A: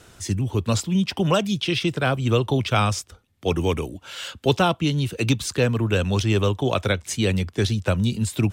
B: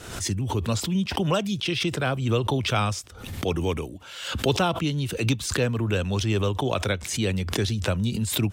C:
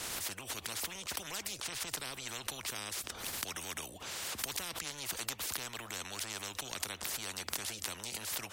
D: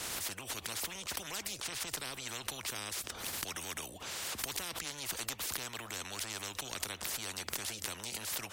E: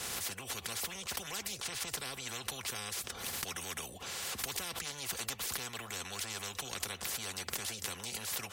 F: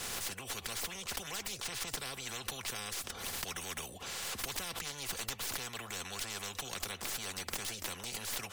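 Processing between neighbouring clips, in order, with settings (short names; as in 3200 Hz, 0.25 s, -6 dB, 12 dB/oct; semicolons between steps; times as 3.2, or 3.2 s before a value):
backwards sustainer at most 64 dB/s; gain -4 dB
spectral compressor 10:1; gain -5.5 dB
one diode to ground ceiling -24.5 dBFS; gain +1 dB
notch comb 310 Hz; gain +1.5 dB
tracing distortion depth 0.077 ms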